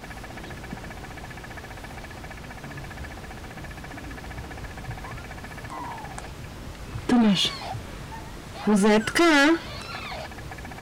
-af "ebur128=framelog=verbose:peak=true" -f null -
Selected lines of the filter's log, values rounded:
Integrated loudness:
  I:         -24.3 LUFS
  Threshold: -37.5 LUFS
Loudness range:
  LRA:        16.0 LU
  Threshold: -47.9 LUFS
  LRA low:   -38.5 LUFS
  LRA high:  -22.4 LUFS
True peak:
  Peak:      -15.4 dBFS